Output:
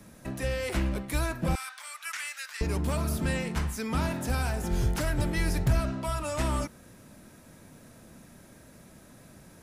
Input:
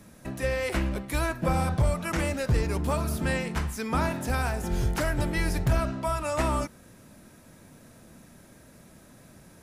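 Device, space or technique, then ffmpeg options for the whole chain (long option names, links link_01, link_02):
one-band saturation: -filter_complex "[0:a]asettb=1/sr,asplit=3[link_01][link_02][link_03];[link_01]atrim=end=1.554[link_04];[link_02]atrim=start=1.55:end=2.61,asetpts=PTS-STARTPTS,afade=type=in:duration=0.004:curve=qsin,afade=type=out:start_time=1.056:duration=0.004:curve=qsin,highpass=frequency=1400:width=0.5412,highpass=frequency=1400:width=1.3066[link_05];[link_03]atrim=start=2.606[link_06];[link_04][link_05]acrossfade=duration=0.004:curve1=hsin:curve2=qsin[link_07];[link_07][link_06]acrossfade=duration=0.004:curve1=qsin:curve2=hsin,acrossover=split=270|3000[link_08][link_09][link_10];[link_09]asoftclip=type=tanh:threshold=-30.5dB[link_11];[link_08][link_11][link_10]amix=inputs=3:normalize=0"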